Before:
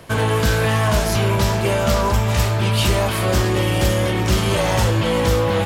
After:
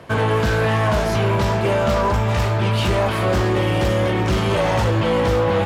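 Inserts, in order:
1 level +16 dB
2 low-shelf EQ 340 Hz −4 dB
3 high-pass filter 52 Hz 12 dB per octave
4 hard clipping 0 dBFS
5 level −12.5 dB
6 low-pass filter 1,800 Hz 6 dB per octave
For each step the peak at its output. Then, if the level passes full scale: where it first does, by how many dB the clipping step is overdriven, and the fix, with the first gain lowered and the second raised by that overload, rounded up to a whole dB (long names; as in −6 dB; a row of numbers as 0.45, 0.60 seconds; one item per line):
+9.5, +7.5, +8.0, 0.0, −12.5, −12.5 dBFS
step 1, 8.0 dB
step 1 +8 dB, step 5 −4.5 dB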